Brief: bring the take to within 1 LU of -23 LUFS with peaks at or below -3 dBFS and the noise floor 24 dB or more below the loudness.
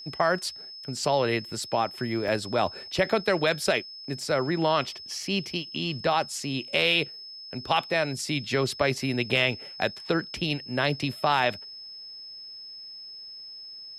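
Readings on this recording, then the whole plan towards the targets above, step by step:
dropouts 1; longest dropout 1.4 ms; steady tone 5.2 kHz; tone level -40 dBFS; loudness -27.0 LUFS; peak level -10.0 dBFS; loudness target -23.0 LUFS
-> interpolate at 2.28 s, 1.4 ms; band-stop 5.2 kHz, Q 30; trim +4 dB

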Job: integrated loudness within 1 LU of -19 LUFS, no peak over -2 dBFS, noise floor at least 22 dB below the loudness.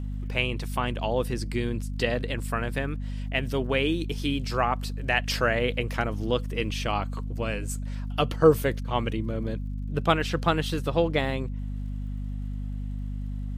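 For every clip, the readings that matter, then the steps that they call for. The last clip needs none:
tick rate 44 per s; hum 50 Hz; highest harmonic 250 Hz; hum level -29 dBFS; loudness -28.0 LUFS; peak level -7.0 dBFS; loudness target -19.0 LUFS
-> de-click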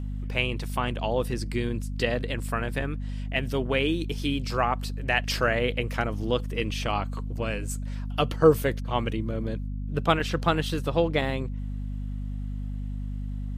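tick rate 0.074 per s; hum 50 Hz; highest harmonic 250 Hz; hum level -29 dBFS
-> de-hum 50 Hz, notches 5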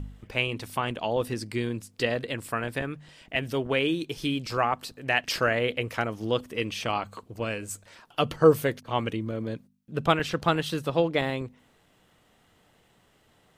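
hum not found; loudness -28.0 LUFS; peak level -7.0 dBFS; loudness target -19.0 LUFS
-> trim +9 dB; peak limiter -2 dBFS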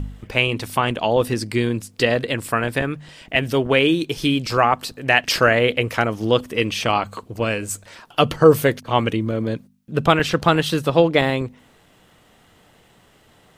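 loudness -19.5 LUFS; peak level -2.0 dBFS; noise floor -55 dBFS

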